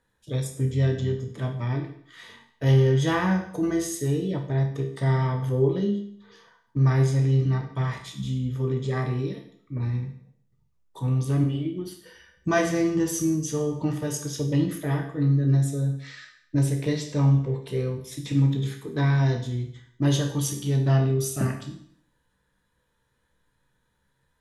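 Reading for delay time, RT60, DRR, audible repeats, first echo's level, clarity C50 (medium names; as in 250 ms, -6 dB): no echo, 0.60 s, 4.0 dB, no echo, no echo, 8.0 dB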